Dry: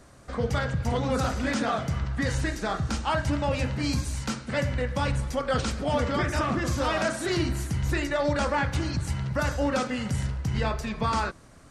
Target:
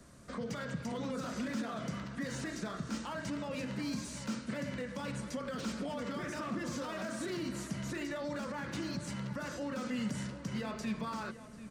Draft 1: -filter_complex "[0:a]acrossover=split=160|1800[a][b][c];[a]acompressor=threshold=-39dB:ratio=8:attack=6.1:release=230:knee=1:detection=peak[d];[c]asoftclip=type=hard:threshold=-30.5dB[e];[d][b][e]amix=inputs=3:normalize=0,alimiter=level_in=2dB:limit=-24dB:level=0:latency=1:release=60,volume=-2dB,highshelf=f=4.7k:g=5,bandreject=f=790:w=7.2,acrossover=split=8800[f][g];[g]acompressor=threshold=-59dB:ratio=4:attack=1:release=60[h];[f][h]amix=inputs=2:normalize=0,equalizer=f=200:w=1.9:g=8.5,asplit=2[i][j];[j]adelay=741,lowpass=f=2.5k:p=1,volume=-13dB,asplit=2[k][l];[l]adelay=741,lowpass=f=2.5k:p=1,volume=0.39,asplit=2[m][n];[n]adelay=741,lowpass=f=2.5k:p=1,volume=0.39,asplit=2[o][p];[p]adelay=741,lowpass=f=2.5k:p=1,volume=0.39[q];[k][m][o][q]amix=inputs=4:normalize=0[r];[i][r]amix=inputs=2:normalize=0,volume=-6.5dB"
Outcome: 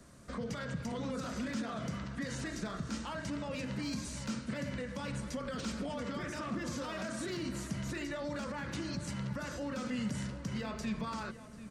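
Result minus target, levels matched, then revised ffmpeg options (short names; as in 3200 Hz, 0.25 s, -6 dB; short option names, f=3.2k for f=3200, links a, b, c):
compressor: peak gain reduction -9.5 dB; hard clip: distortion -10 dB
-filter_complex "[0:a]acrossover=split=160|1800[a][b][c];[a]acompressor=threshold=-50dB:ratio=8:attack=6.1:release=230:knee=1:detection=peak[d];[c]asoftclip=type=hard:threshold=-37dB[e];[d][b][e]amix=inputs=3:normalize=0,alimiter=level_in=2dB:limit=-24dB:level=0:latency=1:release=60,volume=-2dB,highshelf=f=4.7k:g=5,bandreject=f=790:w=7.2,acrossover=split=8800[f][g];[g]acompressor=threshold=-59dB:ratio=4:attack=1:release=60[h];[f][h]amix=inputs=2:normalize=0,equalizer=f=200:w=1.9:g=8.5,asplit=2[i][j];[j]adelay=741,lowpass=f=2.5k:p=1,volume=-13dB,asplit=2[k][l];[l]adelay=741,lowpass=f=2.5k:p=1,volume=0.39,asplit=2[m][n];[n]adelay=741,lowpass=f=2.5k:p=1,volume=0.39,asplit=2[o][p];[p]adelay=741,lowpass=f=2.5k:p=1,volume=0.39[q];[k][m][o][q]amix=inputs=4:normalize=0[r];[i][r]amix=inputs=2:normalize=0,volume=-6.5dB"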